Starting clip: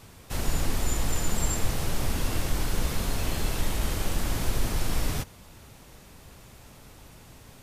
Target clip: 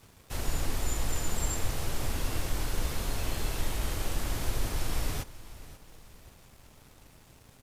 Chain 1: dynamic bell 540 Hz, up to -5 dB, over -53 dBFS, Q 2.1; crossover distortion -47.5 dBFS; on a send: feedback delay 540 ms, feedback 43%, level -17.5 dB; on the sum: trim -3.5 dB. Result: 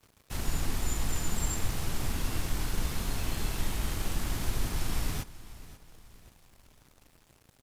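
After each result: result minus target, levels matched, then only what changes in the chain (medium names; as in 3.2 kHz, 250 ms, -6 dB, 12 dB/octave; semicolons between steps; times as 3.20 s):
crossover distortion: distortion +7 dB; 500 Hz band -3.0 dB
change: crossover distortion -55.5 dBFS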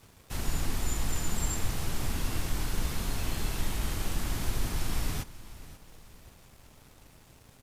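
500 Hz band -3.0 dB
change: dynamic bell 190 Hz, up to -5 dB, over -53 dBFS, Q 2.1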